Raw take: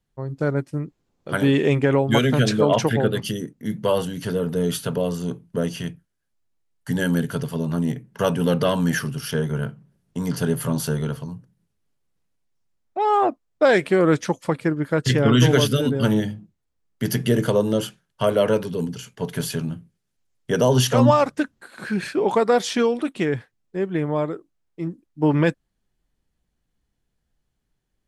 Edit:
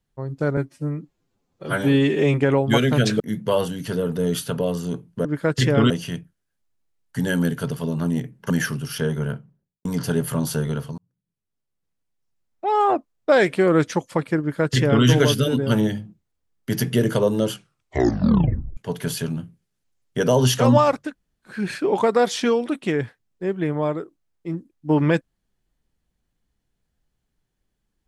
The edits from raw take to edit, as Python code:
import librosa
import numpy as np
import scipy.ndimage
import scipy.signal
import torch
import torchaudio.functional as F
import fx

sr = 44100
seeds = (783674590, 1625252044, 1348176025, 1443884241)

y = fx.studio_fade_out(x, sr, start_s=9.54, length_s=0.64)
y = fx.edit(y, sr, fx.stretch_span(start_s=0.57, length_s=1.18, factor=1.5),
    fx.cut(start_s=2.61, length_s=0.96),
    fx.cut(start_s=8.22, length_s=0.61),
    fx.fade_in_span(start_s=11.31, length_s=1.73),
    fx.duplicate(start_s=14.73, length_s=0.65, to_s=5.62),
    fx.tape_stop(start_s=17.86, length_s=1.24),
    fx.room_tone_fill(start_s=21.39, length_s=0.48, crossfade_s=0.24), tone=tone)